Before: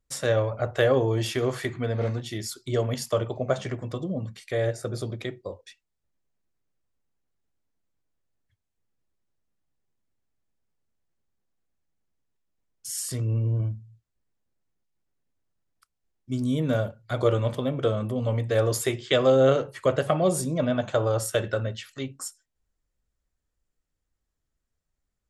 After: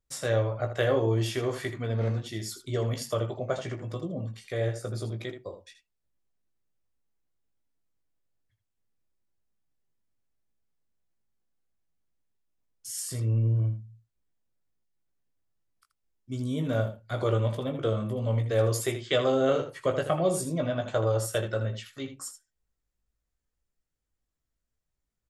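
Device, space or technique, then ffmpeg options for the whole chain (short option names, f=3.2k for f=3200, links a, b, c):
slapback doubling: -filter_complex "[0:a]asplit=3[a][b][c];[b]adelay=18,volume=-6dB[d];[c]adelay=80,volume=-10dB[e];[a][d][e]amix=inputs=3:normalize=0,volume=-4.5dB"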